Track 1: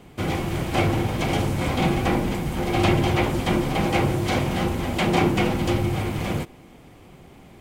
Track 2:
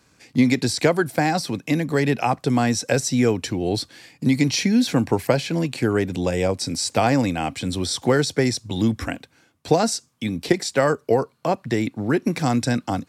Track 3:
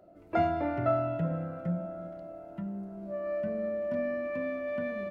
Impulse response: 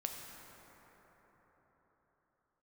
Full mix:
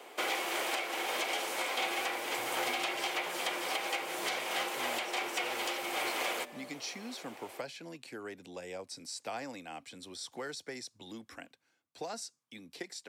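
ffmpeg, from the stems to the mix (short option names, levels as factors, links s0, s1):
-filter_complex "[0:a]highpass=f=440:w=0.5412,highpass=f=440:w=1.3066,volume=1.33[s0];[1:a]highpass=f=490:p=1,adelay=2300,volume=0.141[s1];[2:a]acompressor=threshold=0.0224:ratio=6,adelay=1600,volume=0.224[s2];[s0][s1][s2]amix=inputs=3:normalize=0,acrossover=split=210|680|1500[s3][s4][s5][s6];[s3]acompressor=threshold=0.00112:ratio=4[s7];[s4]acompressor=threshold=0.00891:ratio=4[s8];[s5]acompressor=threshold=0.0112:ratio=4[s9];[s6]acompressor=threshold=0.0316:ratio=4[s10];[s7][s8][s9][s10]amix=inputs=4:normalize=0,alimiter=limit=0.075:level=0:latency=1:release=422"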